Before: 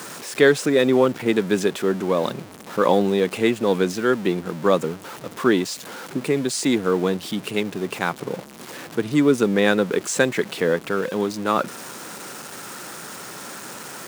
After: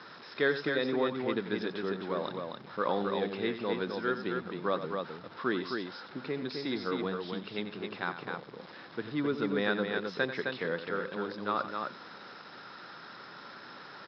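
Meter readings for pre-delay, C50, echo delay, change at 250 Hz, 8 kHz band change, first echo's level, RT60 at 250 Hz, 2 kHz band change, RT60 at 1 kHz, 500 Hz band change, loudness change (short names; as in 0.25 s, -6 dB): none, none, 90 ms, -13.0 dB, under -35 dB, -11.5 dB, none, -8.5 dB, none, -13.0 dB, -12.0 dB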